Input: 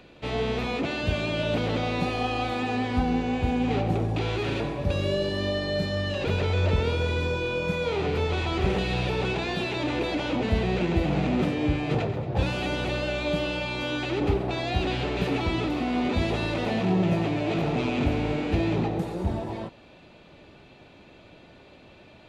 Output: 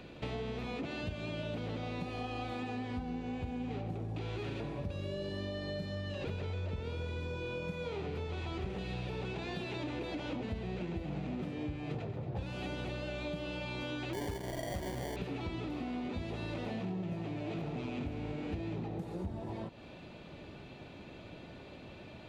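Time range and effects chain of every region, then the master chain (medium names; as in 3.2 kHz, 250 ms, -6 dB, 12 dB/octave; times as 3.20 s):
14.13–15.16 s: peaking EQ 600 Hz +7 dB 0.71 oct + sample-rate reducer 1.3 kHz
whole clip: peaking EQ 130 Hz +4.5 dB 2.8 oct; compression, threshold -36 dBFS; trim -1 dB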